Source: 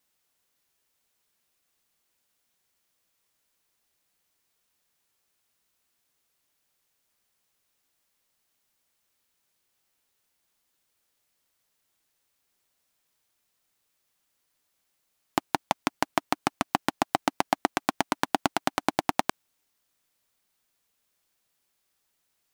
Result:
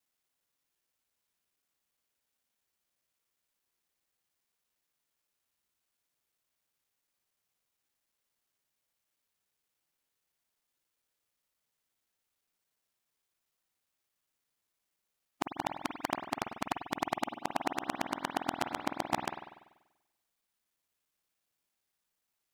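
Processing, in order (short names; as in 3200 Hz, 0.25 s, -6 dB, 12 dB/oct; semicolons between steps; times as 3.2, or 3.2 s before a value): local time reversal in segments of 58 ms; spring tank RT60 1 s, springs 48 ms, chirp 55 ms, DRR 5.5 dB; gain -8.5 dB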